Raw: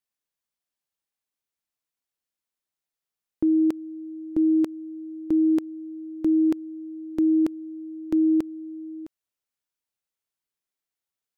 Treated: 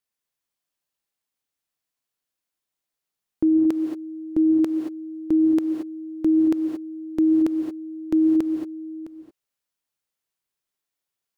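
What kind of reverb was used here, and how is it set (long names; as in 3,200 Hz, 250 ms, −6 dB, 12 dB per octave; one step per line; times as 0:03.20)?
reverb whose tail is shaped and stops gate 250 ms rising, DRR 4 dB
level +2 dB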